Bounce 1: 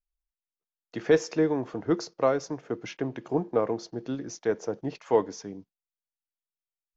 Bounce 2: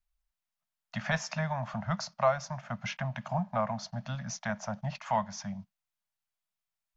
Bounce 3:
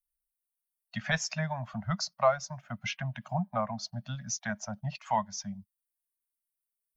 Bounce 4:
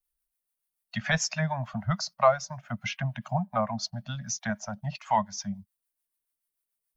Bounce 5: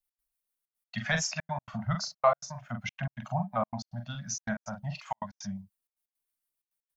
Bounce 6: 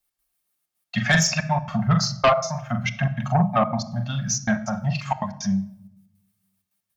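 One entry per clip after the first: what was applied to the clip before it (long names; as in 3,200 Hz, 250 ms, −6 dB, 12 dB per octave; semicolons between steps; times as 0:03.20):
Chebyshev band-stop filter 220–600 Hz, order 4; high-shelf EQ 4,100 Hz −5 dB; in parallel at +2 dB: downward compressor, threshold −40 dBFS, peak gain reduction 16.5 dB
spectral dynamics exaggerated over time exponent 1.5; high-shelf EQ 3,500 Hz +7 dB; level +2 dB
two-band tremolo in antiphase 6.9 Hz, depth 50%, crossover 740 Hz; level +6 dB
double-tracking delay 42 ms −6 dB; gate pattern "x.xxxxx." 161 BPM −60 dB; level −3 dB
notch comb filter 490 Hz; rectangular room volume 2,300 cubic metres, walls furnished, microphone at 0.92 metres; in parallel at −6 dB: sine wavefolder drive 9 dB, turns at −12 dBFS; on the sum: level +1.5 dB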